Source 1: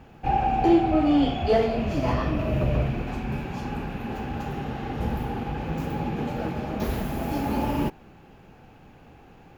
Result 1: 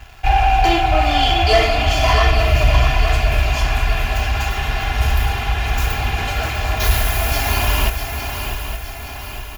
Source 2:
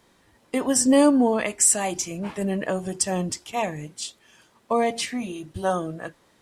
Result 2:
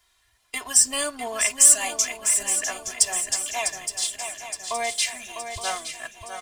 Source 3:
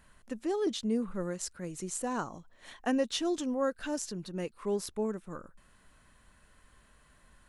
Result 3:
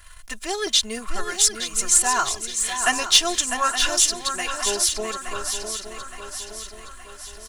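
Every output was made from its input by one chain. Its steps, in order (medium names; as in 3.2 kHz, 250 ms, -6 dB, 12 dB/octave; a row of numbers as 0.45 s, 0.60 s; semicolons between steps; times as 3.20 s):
amplifier tone stack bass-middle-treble 10-0-10; comb 2.9 ms, depth 87%; waveshaping leveller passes 1; on a send: shuffle delay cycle 868 ms, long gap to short 3:1, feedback 50%, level -8 dB; on the sum: peak normalisation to -3 dBFS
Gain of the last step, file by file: +15.0 dB, +1.0 dB, +16.5 dB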